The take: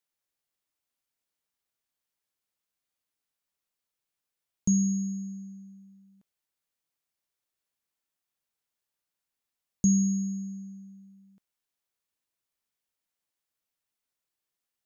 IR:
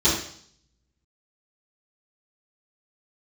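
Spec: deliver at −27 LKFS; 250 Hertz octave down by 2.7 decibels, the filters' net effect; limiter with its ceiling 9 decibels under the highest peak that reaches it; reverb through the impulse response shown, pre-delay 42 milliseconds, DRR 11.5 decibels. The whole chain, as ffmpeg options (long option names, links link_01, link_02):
-filter_complex "[0:a]equalizer=frequency=250:width_type=o:gain=-4,alimiter=limit=-24dB:level=0:latency=1,asplit=2[link_01][link_02];[1:a]atrim=start_sample=2205,adelay=42[link_03];[link_02][link_03]afir=irnorm=-1:irlink=0,volume=-28dB[link_04];[link_01][link_04]amix=inputs=2:normalize=0,volume=5dB"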